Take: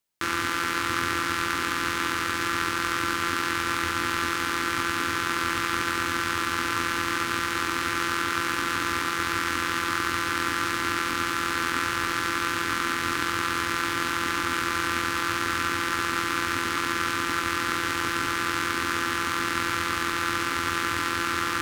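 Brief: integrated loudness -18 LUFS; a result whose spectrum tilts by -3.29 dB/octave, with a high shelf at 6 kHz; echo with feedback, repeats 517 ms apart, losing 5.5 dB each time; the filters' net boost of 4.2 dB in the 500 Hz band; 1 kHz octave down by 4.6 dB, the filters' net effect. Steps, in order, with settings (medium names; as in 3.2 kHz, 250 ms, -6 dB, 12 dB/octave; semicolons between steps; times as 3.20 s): peaking EQ 500 Hz +8 dB; peaking EQ 1 kHz -7.5 dB; treble shelf 6 kHz -9 dB; feedback delay 517 ms, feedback 53%, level -5.5 dB; trim +8.5 dB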